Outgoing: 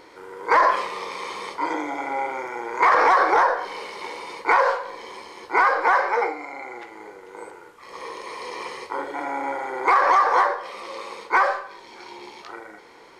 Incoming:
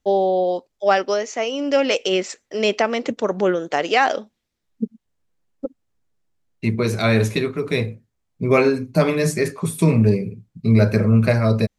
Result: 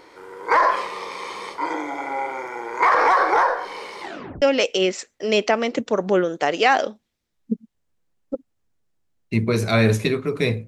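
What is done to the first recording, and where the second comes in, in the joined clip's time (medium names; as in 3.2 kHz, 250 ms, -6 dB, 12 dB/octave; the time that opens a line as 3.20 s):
outgoing
4.01 s: tape stop 0.41 s
4.42 s: go over to incoming from 1.73 s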